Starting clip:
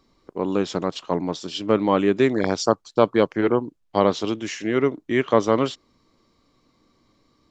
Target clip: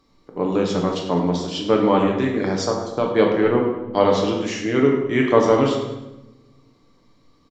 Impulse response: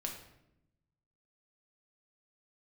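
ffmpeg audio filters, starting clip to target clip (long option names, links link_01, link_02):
-filter_complex "[0:a]asettb=1/sr,asplit=3[link_01][link_02][link_03];[link_01]atrim=end=1.984[link_04];[link_02]atrim=start=1.98:end=3.06,asetpts=PTS-STARTPTS,afade=type=in:duration=0.004:curve=qsin,afade=type=out:start_time=1.076:duration=0.004:curve=qsin,acompressor=threshold=-23dB:ratio=2[link_05];[link_03]atrim=start=3.056[link_06];[link_04][link_05]acrossfade=duration=0.004:curve1=hsin:curve2=qsin[link_07];[link_07][link_06]acrossfade=duration=0.004:curve1=qsin:curve2=hsin,aecho=1:1:103|206|309|412:0.188|0.081|0.0348|0.015[link_08];[1:a]atrim=start_sample=2205,asetrate=35280,aresample=44100[link_09];[link_08][link_09]afir=irnorm=-1:irlink=0,volume=1.5dB"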